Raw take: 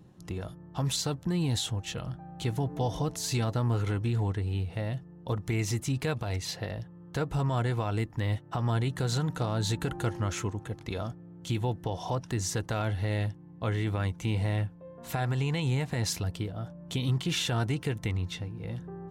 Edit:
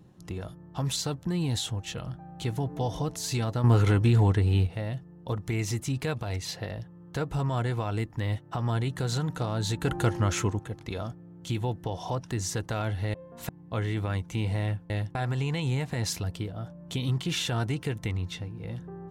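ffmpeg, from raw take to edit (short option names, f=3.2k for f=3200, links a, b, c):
-filter_complex "[0:a]asplit=9[a][b][c][d][e][f][g][h][i];[a]atrim=end=3.642[j];[b]atrim=start=3.638:end=4.672,asetpts=PTS-STARTPTS,volume=7.5dB[k];[c]atrim=start=4.668:end=9.852[l];[d]atrim=start=9.848:end=10.592,asetpts=PTS-STARTPTS,volume=5dB[m];[e]atrim=start=10.588:end=13.142[n];[f]atrim=start=14.798:end=15.152[o];[g]atrim=start=13.388:end=14.802[p];[h]atrim=start=13.138:end=13.392[q];[i]atrim=start=15.148[r];[j][k]acrossfade=d=0.004:c1=hsin:c2=hsin[s];[s][l]acrossfade=d=0.004:c1=hsin:c2=hsin[t];[t][m]acrossfade=d=0.004:c1=hsin:c2=hsin[u];[u][n]acrossfade=d=0.004:c1=hsin:c2=hsin[v];[v][o]acrossfade=d=0.004:c1=hsin:c2=hsin[w];[w][p]acrossfade=d=0.004:c1=hsin:c2=hsin[x];[x][q]acrossfade=d=0.004:c1=hsin:c2=hsin[y];[y][r]acrossfade=d=0.004:c1=hsin:c2=hsin"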